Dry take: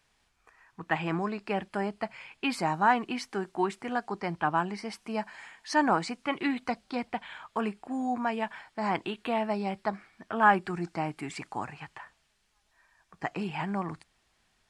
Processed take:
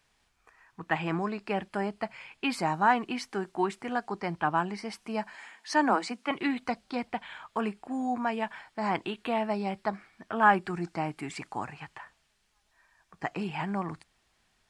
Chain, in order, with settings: 5.35–6.31 s: steep high-pass 190 Hz 96 dB/octave

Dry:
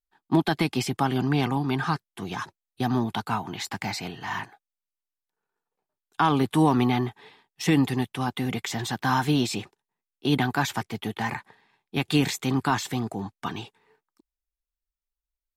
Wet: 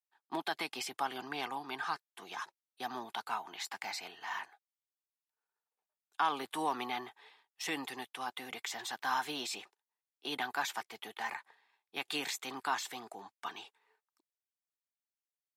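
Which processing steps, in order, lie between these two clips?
high-pass 630 Hz 12 dB/octave; trim -7.5 dB

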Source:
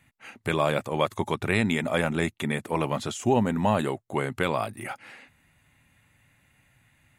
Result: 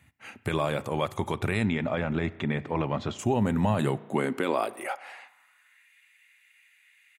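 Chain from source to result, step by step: peak limiter -15.5 dBFS, peak gain reduction 6 dB; 1.65–3.19 s: distance through air 190 m; speakerphone echo 100 ms, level -29 dB; spring tank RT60 1.3 s, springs 34 ms, chirp 50 ms, DRR 18 dB; high-pass sweep 67 Hz -> 2.2 kHz, 3.40–5.95 s

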